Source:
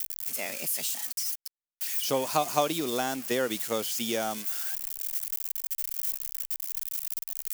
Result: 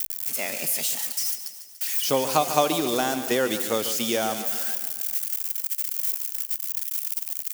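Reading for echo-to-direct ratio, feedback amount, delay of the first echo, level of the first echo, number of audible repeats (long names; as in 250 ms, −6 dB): −9.5 dB, 56%, 144 ms, −11.0 dB, 5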